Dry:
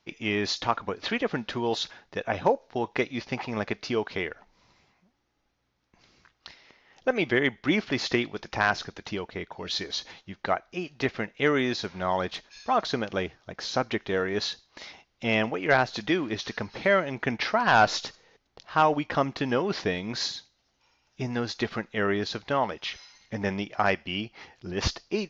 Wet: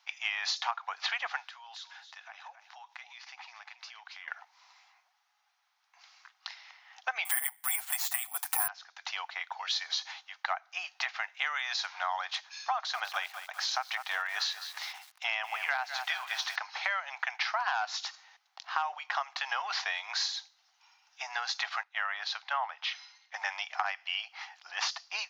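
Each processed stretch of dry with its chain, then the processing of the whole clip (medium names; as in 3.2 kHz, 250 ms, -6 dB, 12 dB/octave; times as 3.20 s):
1.44–4.28 s: peaking EQ 380 Hz -10.5 dB 2.5 oct + compression 5:1, threshold -48 dBFS + delay 277 ms -10 dB
7.25–8.68 s: resonant high-pass 730 Hz, resonance Q 1.8 + comb 6.7 ms, depth 97% + careless resampling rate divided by 4×, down none, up zero stuff
12.74–16.56 s: high-pass 370 Hz + bit-crushed delay 200 ms, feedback 55%, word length 7-bit, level -13 dB
21.83–23.34 s: high-pass 390 Hz 24 dB/octave + distance through air 120 m + three bands expanded up and down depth 40%
whole clip: Chebyshev high-pass 750 Hz, order 5; compression 8:1, threshold -33 dBFS; trim +4.5 dB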